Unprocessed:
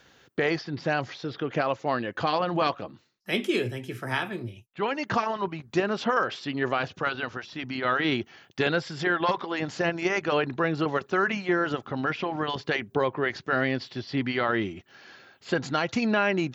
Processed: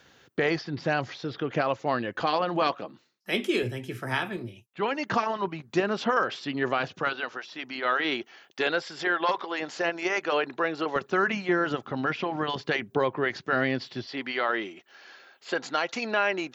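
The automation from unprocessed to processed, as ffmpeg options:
-af "asetnsamples=n=441:p=0,asendcmd='2.2 highpass f 190;3.63 highpass f 50;4.37 highpass f 130;7.13 highpass f 370;10.96 highpass f 110;14.06 highpass f 420',highpass=46"

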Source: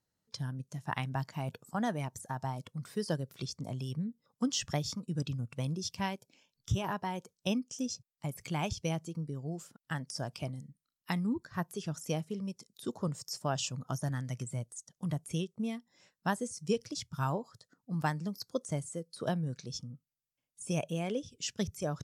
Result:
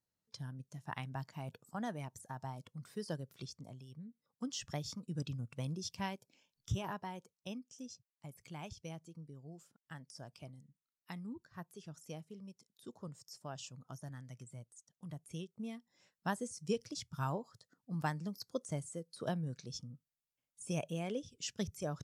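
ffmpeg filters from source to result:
-af "volume=12.5dB,afade=t=out:st=3.42:d=0.44:silence=0.354813,afade=t=in:st=3.86:d=1.35:silence=0.266073,afade=t=out:st=6.71:d=0.77:silence=0.398107,afade=t=in:st=15.05:d=1.34:silence=0.375837"

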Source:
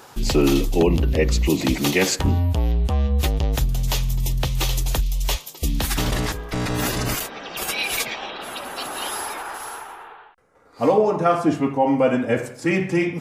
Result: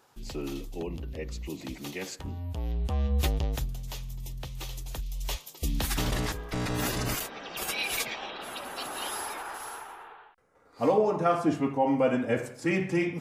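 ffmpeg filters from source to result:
-af "volume=4dB,afade=t=in:st=2.37:d=0.88:silence=0.237137,afade=t=out:st=3.25:d=0.56:silence=0.298538,afade=t=in:st=4.88:d=0.9:silence=0.334965"

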